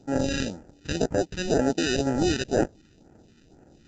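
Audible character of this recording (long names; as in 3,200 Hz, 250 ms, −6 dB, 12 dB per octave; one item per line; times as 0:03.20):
aliases and images of a low sample rate 1,100 Hz, jitter 0%
phaser sweep stages 2, 2 Hz, lowest notch 650–3,500 Hz
mu-law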